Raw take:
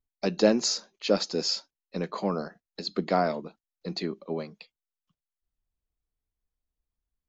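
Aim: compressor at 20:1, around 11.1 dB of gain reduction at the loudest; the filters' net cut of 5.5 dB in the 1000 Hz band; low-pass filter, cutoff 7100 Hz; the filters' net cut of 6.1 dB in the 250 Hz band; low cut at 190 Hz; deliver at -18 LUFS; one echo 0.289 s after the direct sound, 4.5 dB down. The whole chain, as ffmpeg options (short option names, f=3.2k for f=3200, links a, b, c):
-af "highpass=190,lowpass=7.1k,equalizer=f=250:t=o:g=-5.5,equalizer=f=1k:t=o:g=-8.5,acompressor=threshold=-30dB:ratio=20,aecho=1:1:289:0.596,volume=18.5dB"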